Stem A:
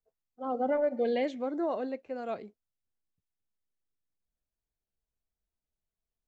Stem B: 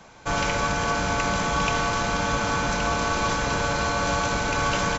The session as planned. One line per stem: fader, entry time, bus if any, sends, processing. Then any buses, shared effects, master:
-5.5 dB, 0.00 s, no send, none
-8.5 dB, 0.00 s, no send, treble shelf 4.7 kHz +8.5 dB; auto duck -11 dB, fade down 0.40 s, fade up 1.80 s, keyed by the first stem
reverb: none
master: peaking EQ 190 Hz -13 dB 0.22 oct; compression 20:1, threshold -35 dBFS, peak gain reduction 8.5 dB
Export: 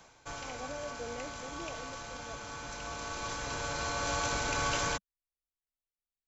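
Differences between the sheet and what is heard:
stem A -5.5 dB -> -14.0 dB; master: missing compression 20:1, threshold -35 dBFS, peak gain reduction 8.5 dB

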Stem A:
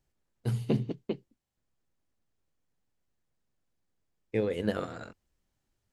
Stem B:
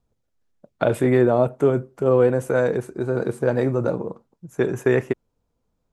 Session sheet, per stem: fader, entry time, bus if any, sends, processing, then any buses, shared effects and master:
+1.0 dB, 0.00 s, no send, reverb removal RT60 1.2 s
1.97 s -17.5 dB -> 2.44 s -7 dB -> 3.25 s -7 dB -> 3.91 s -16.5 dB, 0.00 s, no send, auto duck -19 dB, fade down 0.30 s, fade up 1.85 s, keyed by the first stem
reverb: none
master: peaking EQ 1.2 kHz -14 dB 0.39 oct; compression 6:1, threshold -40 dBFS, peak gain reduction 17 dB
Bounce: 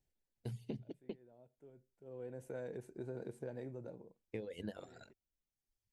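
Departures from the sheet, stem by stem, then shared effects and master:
stem A +1.0 dB -> -6.5 dB; stem B -17.5 dB -> -27.5 dB

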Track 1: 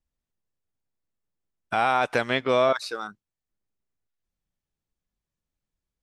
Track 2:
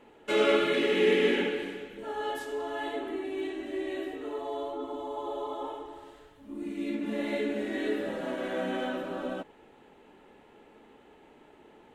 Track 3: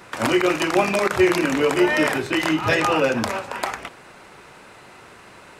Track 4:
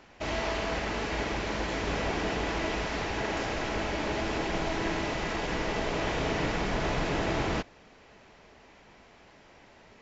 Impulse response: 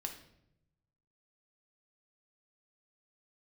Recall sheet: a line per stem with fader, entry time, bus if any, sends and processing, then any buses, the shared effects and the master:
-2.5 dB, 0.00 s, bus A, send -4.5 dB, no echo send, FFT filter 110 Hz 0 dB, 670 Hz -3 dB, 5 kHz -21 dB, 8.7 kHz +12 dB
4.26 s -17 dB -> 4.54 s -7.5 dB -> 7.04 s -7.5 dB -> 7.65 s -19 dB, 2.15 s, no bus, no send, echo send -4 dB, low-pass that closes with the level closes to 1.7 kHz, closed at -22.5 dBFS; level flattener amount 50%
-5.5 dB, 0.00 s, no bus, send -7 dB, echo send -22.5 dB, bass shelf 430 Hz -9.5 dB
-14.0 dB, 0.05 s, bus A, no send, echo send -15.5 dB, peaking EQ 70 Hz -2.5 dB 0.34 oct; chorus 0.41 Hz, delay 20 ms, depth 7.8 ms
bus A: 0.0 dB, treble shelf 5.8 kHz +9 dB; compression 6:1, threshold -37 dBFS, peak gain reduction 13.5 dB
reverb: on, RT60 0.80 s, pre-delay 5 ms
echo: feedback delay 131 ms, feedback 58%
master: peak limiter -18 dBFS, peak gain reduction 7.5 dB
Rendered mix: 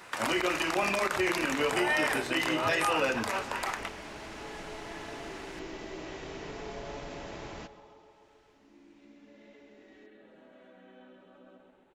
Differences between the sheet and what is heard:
stem 1 -2.5 dB -> -9.0 dB; stem 2 -17.0 dB -> -28.0 dB; stem 4: missing chorus 0.41 Hz, delay 20 ms, depth 7.8 ms

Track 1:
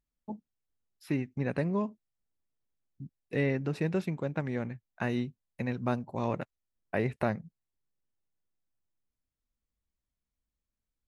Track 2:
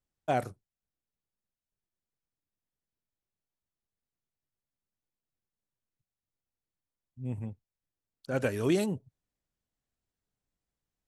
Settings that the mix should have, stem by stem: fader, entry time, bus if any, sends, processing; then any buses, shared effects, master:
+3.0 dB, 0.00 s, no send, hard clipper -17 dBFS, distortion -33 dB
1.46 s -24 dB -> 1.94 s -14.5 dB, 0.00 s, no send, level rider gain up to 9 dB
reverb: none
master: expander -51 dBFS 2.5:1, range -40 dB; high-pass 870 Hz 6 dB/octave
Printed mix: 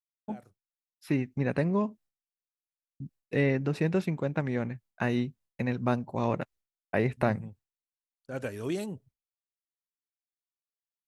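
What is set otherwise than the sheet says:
stem 1: missing hard clipper -17 dBFS, distortion -33 dB; master: missing high-pass 870 Hz 6 dB/octave

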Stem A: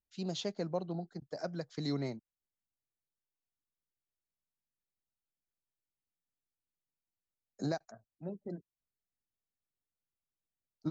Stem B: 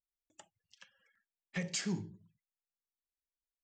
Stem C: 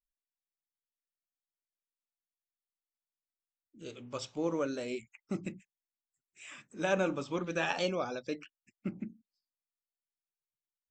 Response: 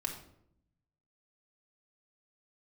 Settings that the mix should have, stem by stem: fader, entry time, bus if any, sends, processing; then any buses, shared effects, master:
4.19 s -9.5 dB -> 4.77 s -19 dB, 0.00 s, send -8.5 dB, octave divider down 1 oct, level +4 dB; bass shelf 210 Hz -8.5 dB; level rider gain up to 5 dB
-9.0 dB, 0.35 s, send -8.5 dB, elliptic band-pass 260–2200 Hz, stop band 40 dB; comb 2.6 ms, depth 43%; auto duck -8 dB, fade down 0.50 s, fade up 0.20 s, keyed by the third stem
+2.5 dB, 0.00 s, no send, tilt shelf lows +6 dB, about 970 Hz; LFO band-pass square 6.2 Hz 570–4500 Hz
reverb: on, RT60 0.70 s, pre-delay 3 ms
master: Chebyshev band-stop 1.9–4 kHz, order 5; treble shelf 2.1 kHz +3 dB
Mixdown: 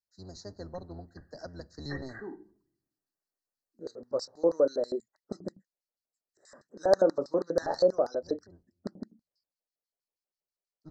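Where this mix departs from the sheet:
stem B -9.0 dB -> +0.5 dB; stem C +2.5 dB -> +9.5 dB; reverb return -9.5 dB

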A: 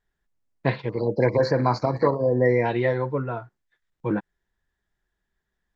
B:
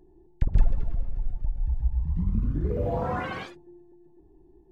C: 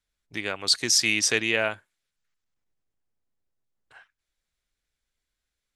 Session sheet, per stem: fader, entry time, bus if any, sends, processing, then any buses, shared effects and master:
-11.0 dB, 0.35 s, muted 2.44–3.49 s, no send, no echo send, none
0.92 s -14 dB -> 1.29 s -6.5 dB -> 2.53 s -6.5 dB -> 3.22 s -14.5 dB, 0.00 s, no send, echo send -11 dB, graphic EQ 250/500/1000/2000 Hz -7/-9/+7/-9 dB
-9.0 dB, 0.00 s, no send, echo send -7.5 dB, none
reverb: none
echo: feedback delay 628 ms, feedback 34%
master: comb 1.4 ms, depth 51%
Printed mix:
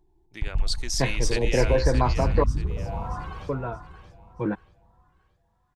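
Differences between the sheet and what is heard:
stem A -11.0 dB -> -2.0 dB; stem B -14.0 dB -> -5.0 dB; master: missing comb 1.4 ms, depth 51%

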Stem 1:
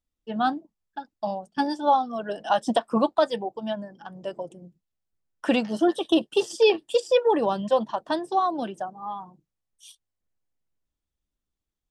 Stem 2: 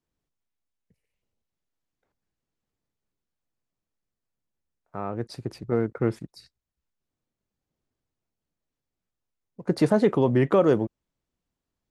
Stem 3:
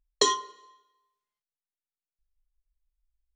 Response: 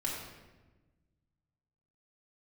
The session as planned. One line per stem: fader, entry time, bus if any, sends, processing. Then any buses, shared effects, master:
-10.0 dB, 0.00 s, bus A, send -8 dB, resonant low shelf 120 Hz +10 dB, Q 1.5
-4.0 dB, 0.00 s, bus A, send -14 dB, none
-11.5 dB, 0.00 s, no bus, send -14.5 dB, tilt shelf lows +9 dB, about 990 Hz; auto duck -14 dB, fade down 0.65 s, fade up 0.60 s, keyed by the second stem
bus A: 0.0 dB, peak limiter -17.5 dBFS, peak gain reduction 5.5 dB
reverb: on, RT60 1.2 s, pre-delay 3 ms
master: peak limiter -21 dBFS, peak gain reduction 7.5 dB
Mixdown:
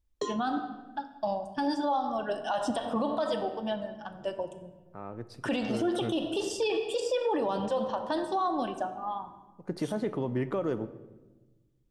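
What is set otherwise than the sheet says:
stem 1 -10.0 dB -> -3.5 dB; stem 2 -4.0 dB -> -11.0 dB

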